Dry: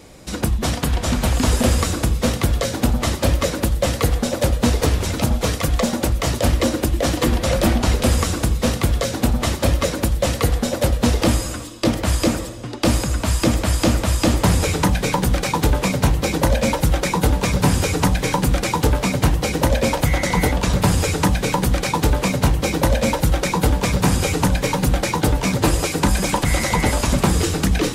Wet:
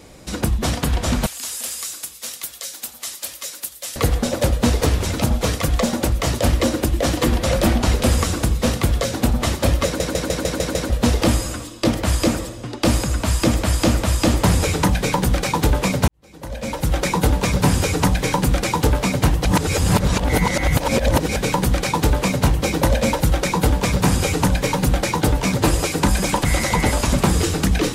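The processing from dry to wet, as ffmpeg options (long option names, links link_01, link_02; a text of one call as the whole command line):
ffmpeg -i in.wav -filter_complex "[0:a]asettb=1/sr,asplit=3[link_01][link_02][link_03];[link_01]atrim=end=1.264[link_04];[link_02]atrim=start=1.26:end=3.96,asetpts=PTS-STARTPTS,afade=type=in:duration=0.004:curve=qsin,afade=type=out:start_time=2.696:duration=0.004:curve=qsin,aderivative[link_05];[link_03]atrim=start=3.956[link_06];[link_04][link_05]acrossfade=duration=0.004:curve1=hsin:curve2=qsin[link_07];[link_07][link_06]acrossfade=duration=0.004:curve1=qsin:curve2=hsin,asplit=11[link_08][link_09][link_10][link_11][link_12][link_13][link_14][link_15][link_16][link_17][link_18];[link_08]atrim=end=10.002[link_19];[link_09]atrim=start=9.848:end=10.002[link_20];[link_10]atrim=start=9.848:end=10.002[link_21];[link_11]atrim=start=9.848:end=10.002[link_22];[link_12]atrim=start=9.848:end=10.002[link_23];[link_13]atrim=start=9.848:end=10.002[link_24];[link_14]atrim=start=9.848:end=10.002[link_25];[link_15]atrim=start=10.898:end=16.08,asetpts=PTS-STARTPTS,afade=type=out:start_time=5.178:duration=0.004:curve=hsin[link_26];[link_16]atrim=start=16.08:end=19.452,asetpts=PTS-STARTPTS,afade=type=in:duration=0.93:curve=qua[link_27];[link_17]atrim=start=19.448:end=21.362,asetpts=PTS-STARTPTS,areverse[link_28];[link_18]atrim=start=21.358[link_29];[link_19][link_20]acrossfade=duration=0.004:curve1=hsin:curve2=hsin[link_30];[link_30][link_21]acrossfade=duration=0.004:curve1=hsin:curve2=hsin[link_31];[link_31][link_22]acrossfade=duration=0.004:curve1=hsin:curve2=hsin[link_32];[link_32][link_23]acrossfade=duration=0.004:curve1=hsin:curve2=hsin[link_33];[link_33][link_24]acrossfade=duration=0.004:curve1=hsin:curve2=hsin[link_34];[link_34][link_25]acrossfade=duration=0.004:curve1=hsin:curve2=hsin[link_35];[link_26][link_27]concat=n=2:v=0:a=1[link_36];[link_35][link_36]acrossfade=duration=0.004:curve1=hsin:curve2=hsin[link_37];[link_37][link_28]acrossfade=duration=0.004:curve1=hsin:curve2=hsin[link_38];[link_38][link_29]acrossfade=duration=0.004:curve1=hsin:curve2=hsin" out.wav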